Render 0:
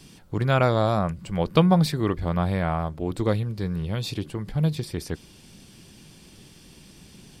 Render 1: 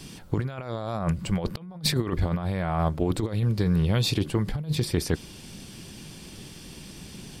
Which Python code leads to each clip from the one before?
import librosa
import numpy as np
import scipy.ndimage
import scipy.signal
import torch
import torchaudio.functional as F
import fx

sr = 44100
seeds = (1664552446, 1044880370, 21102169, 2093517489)

y = fx.over_compress(x, sr, threshold_db=-27.0, ratio=-0.5)
y = F.gain(torch.from_numpy(y), 2.0).numpy()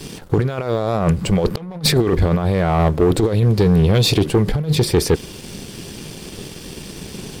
y = fx.peak_eq(x, sr, hz=440.0, db=8.0, octaves=0.59)
y = fx.leveller(y, sr, passes=2)
y = F.gain(torch.from_numpy(y), 2.5).numpy()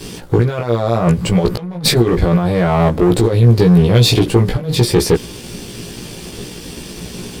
y = fx.doubler(x, sr, ms=17.0, db=-2.5)
y = F.gain(torch.from_numpy(y), 1.5).numpy()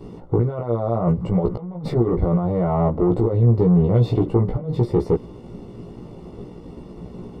y = scipy.signal.savgol_filter(x, 65, 4, mode='constant')
y = F.gain(torch.from_numpy(y), -6.0).numpy()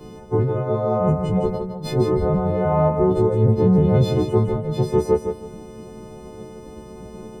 y = fx.freq_snap(x, sr, grid_st=3)
y = fx.echo_feedback(y, sr, ms=159, feedback_pct=24, wet_db=-7.0)